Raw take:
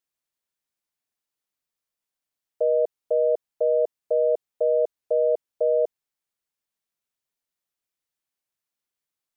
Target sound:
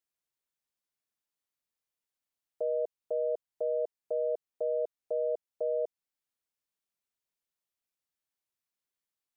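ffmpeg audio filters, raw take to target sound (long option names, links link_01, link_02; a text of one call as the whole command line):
ffmpeg -i in.wav -af "alimiter=limit=-19.5dB:level=0:latency=1:release=315,volume=-4.5dB" out.wav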